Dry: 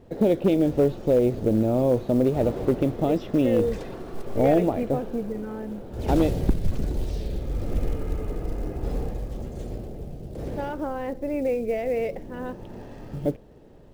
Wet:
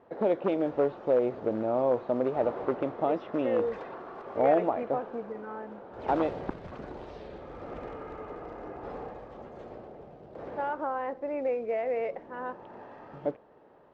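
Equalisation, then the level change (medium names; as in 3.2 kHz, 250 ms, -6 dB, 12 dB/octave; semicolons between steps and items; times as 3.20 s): band-pass filter 1.1 kHz, Q 1.5; distance through air 100 m; +5.0 dB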